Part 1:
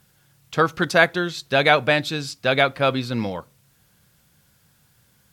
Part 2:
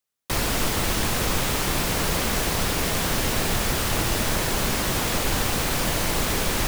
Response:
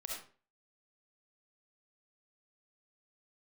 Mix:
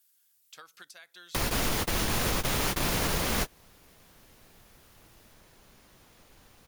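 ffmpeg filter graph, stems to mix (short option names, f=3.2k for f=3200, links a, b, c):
-filter_complex "[0:a]aderivative,alimiter=limit=-22dB:level=0:latency=1:release=194,acompressor=threshold=-39dB:ratio=20,volume=-6.5dB,asplit=2[a][b];[1:a]bandreject=f=7.9k:w=11,adelay=1050,volume=1dB[c];[b]apad=whole_len=340729[d];[c][d]sidechaingate=range=-35dB:threshold=-58dB:ratio=16:detection=peak[e];[a][e]amix=inputs=2:normalize=0,alimiter=limit=-17.5dB:level=0:latency=1:release=224"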